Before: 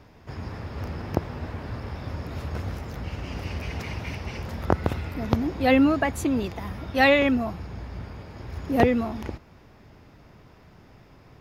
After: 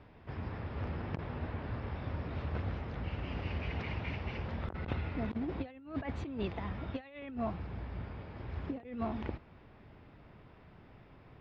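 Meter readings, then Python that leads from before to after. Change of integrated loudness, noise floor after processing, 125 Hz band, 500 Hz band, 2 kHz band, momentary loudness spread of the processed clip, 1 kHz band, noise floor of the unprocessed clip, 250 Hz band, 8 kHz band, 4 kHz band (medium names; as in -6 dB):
-13.5 dB, -58 dBFS, -7.0 dB, -16.0 dB, -16.5 dB, 20 LU, -14.5 dB, -53 dBFS, -14.0 dB, under -25 dB, -15.5 dB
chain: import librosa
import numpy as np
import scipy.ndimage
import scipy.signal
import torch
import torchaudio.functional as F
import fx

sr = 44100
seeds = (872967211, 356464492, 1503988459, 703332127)

y = scipy.signal.sosfilt(scipy.signal.butter(4, 3700.0, 'lowpass', fs=sr, output='sos'), x)
y = fx.over_compress(y, sr, threshold_db=-27.0, ratio=-0.5)
y = y * librosa.db_to_amplitude(-8.5)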